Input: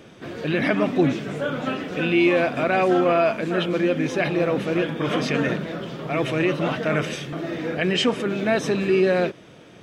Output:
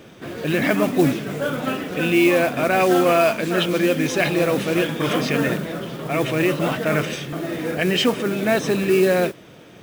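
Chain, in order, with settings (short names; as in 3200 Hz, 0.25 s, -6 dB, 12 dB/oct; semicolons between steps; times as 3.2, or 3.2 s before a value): 2.8–5.13 high shelf 3900 Hz +10.5 dB; modulation noise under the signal 20 dB; gain +2 dB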